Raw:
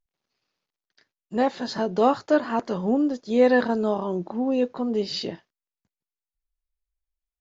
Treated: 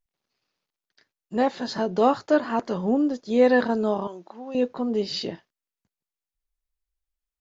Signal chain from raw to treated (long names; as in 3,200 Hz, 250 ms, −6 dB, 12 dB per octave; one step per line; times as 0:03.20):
0:04.07–0:04.55: high-pass filter 1,500 Hz 6 dB per octave